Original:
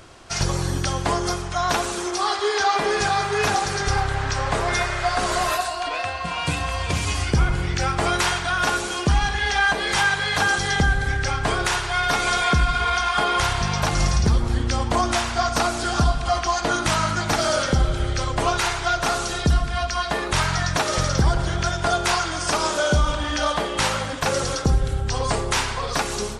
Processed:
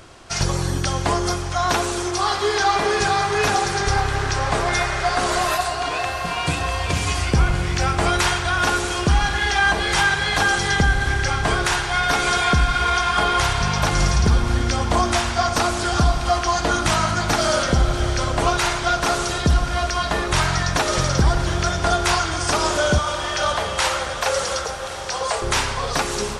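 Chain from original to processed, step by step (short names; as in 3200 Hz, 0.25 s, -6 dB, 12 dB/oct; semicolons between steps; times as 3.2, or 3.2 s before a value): 22.98–25.42 steep high-pass 440 Hz 96 dB/oct; diffused feedback echo 0.657 s, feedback 71%, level -12.5 dB; gain +1.5 dB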